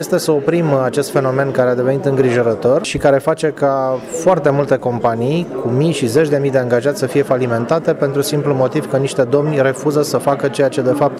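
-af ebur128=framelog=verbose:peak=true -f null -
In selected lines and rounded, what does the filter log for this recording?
Integrated loudness:
  I:         -15.3 LUFS
  Threshold: -25.3 LUFS
Loudness range:
  LRA:         1.0 LU
  Threshold: -35.3 LUFS
  LRA low:   -15.7 LUFS
  LRA high:  -14.7 LUFS
True peak:
  Peak:       -2.8 dBFS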